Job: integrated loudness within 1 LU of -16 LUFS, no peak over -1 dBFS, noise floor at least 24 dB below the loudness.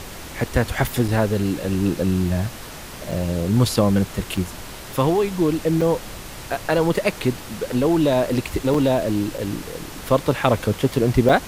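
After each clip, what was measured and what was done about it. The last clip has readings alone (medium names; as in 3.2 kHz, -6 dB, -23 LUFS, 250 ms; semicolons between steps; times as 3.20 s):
dropouts 7; longest dropout 4.6 ms; noise floor -36 dBFS; noise floor target -46 dBFS; loudness -21.5 LUFS; peak level -3.5 dBFS; loudness target -16.0 LUFS
-> interpolate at 1.08/3.11/4.37/5.81/8.74/9.38/11.29 s, 4.6 ms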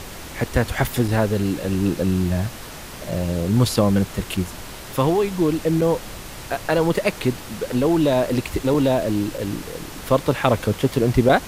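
dropouts 0; noise floor -36 dBFS; noise floor target -46 dBFS
-> noise print and reduce 10 dB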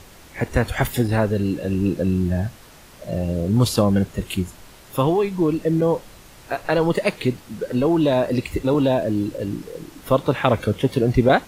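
noise floor -46 dBFS; loudness -21.5 LUFS; peak level -4.0 dBFS; loudness target -16.0 LUFS
-> trim +5.5 dB; peak limiter -1 dBFS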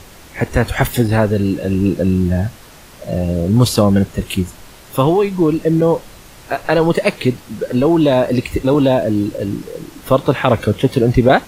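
loudness -16.0 LUFS; peak level -1.0 dBFS; noise floor -40 dBFS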